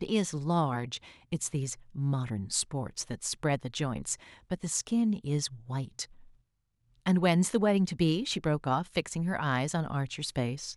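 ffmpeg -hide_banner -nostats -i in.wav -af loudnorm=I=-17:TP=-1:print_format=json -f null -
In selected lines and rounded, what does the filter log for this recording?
"input_i" : "-31.0",
"input_tp" : "-12.8",
"input_lra" : "4.6",
"input_thresh" : "-41.1",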